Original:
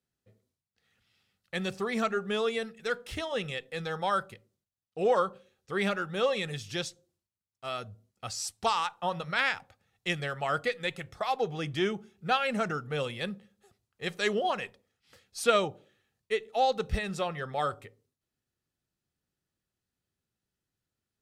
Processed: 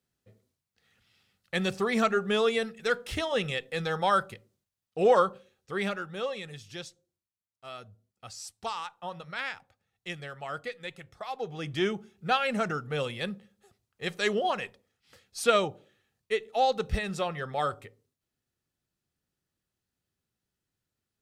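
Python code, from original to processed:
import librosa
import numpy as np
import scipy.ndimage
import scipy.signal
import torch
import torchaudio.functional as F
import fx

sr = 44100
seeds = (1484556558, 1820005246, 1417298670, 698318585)

y = fx.gain(x, sr, db=fx.line((5.21, 4.0), (6.42, -7.0), (11.3, -7.0), (11.82, 1.0)))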